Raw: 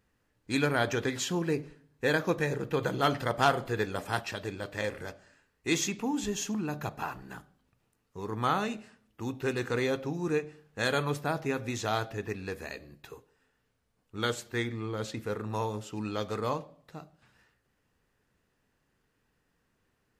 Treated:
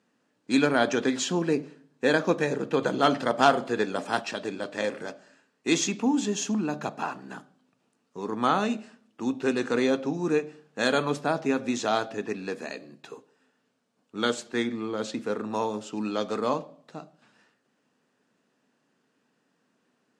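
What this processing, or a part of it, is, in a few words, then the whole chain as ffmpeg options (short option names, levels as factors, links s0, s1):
television speaker: -af "highpass=f=170:w=0.5412,highpass=f=170:w=1.3066,equalizer=f=250:t=q:w=4:g=6,equalizer=f=640:t=q:w=4:g=3,equalizer=f=2000:t=q:w=4:g=-4,lowpass=f=8800:w=0.5412,lowpass=f=8800:w=1.3066,volume=1.58"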